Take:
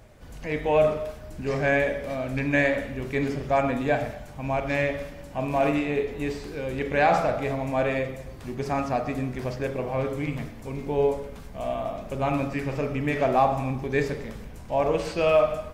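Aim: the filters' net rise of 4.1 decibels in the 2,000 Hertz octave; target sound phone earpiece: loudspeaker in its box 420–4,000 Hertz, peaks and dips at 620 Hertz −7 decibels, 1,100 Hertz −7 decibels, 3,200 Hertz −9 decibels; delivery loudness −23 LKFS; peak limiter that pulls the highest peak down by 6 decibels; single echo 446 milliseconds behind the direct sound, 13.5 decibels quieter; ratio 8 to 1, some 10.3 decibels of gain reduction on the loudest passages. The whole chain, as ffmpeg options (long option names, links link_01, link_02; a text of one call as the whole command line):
ffmpeg -i in.wav -af "equalizer=frequency=2000:width_type=o:gain=6.5,acompressor=threshold=-25dB:ratio=8,alimiter=limit=-20.5dB:level=0:latency=1,highpass=420,equalizer=frequency=620:width_type=q:width=4:gain=-7,equalizer=frequency=1100:width_type=q:width=4:gain=-7,equalizer=frequency=3200:width_type=q:width=4:gain=-9,lowpass=frequency=4000:width=0.5412,lowpass=frequency=4000:width=1.3066,aecho=1:1:446:0.211,volume=13dB" out.wav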